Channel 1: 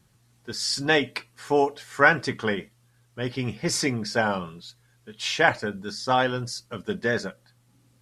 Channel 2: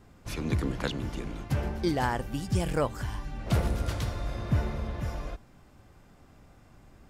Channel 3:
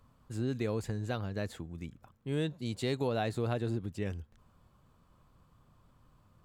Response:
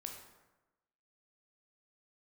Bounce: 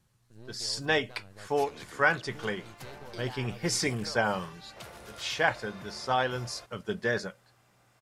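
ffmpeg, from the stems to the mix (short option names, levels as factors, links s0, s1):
-filter_complex "[0:a]dynaudnorm=f=100:g=17:m=1.88,volume=0.422[s0];[1:a]highpass=f=940:p=1,acompressor=threshold=0.00794:ratio=4,adelay=1300,volume=0.841[s1];[2:a]aeval=exprs='max(val(0),0)':c=same,volume=0.251[s2];[s0][s1][s2]amix=inputs=3:normalize=0,equalizer=f=260:t=o:w=0.44:g=-6"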